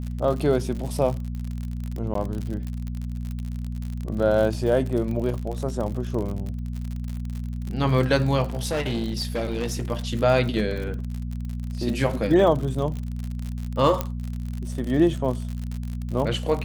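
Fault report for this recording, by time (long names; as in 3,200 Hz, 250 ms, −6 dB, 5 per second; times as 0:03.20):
surface crackle 62 per second −29 dBFS
mains hum 60 Hz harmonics 4 −30 dBFS
0:02.14–0:02.15: drop-out 13 ms
0:08.50–0:09.85: clipping −21.5 dBFS
0:14.01: click −10 dBFS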